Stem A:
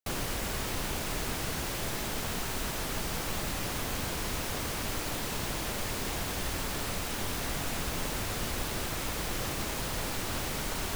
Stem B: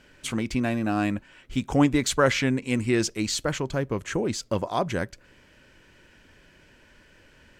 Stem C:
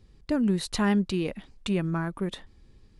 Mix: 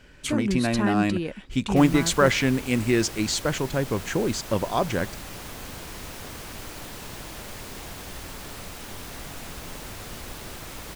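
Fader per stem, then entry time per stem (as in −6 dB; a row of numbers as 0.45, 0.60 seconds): −4.5, +1.5, −1.0 decibels; 1.70, 0.00, 0.00 seconds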